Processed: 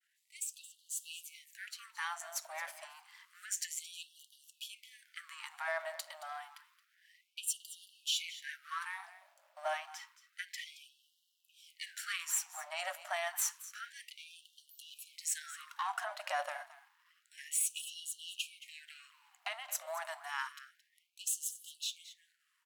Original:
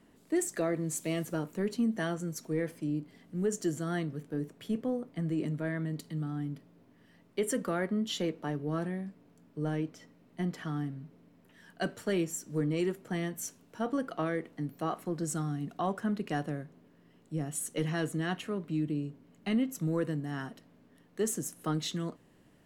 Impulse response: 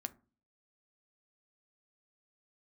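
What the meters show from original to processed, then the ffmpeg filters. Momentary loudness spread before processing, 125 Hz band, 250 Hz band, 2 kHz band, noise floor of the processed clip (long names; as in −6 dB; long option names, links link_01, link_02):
9 LU, below −40 dB, below −40 dB, 0.0 dB, −78 dBFS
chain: -filter_complex "[0:a]aeval=exprs='if(lt(val(0),0),0.447*val(0),val(0))':channel_layout=same,bandreject=frequency=390:width=12,agate=range=-33dB:threshold=-60dB:ratio=3:detection=peak,dynaudnorm=framelen=410:gausssize=11:maxgain=10dB,alimiter=limit=-19.5dB:level=0:latency=1:release=24,asplit=2[link_01][link_02];[link_02]aecho=0:1:222:0.168[link_03];[link_01][link_03]amix=inputs=2:normalize=0,afftfilt=real='re*gte(b*sr/1024,550*pow(2800/550,0.5+0.5*sin(2*PI*0.29*pts/sr)))':imag='im*gte(b*sr/1024,550*pow(2800/550,0.5+0.5*sin(2*PI*0.29*pts/sr)))':win_size=1024:overlap=0.75,volume=-1dB"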